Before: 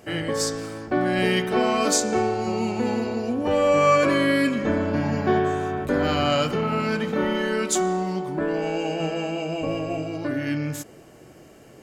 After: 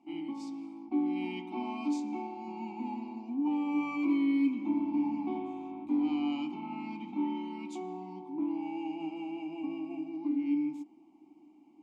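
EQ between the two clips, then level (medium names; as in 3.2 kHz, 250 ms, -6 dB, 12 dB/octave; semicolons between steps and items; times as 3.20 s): dynamic bell 2.8 kHz, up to +4 dB, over -41 dBFS, Q 1.1; vowel filter u; static phaser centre 450 Hz, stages 6; 0.0 dB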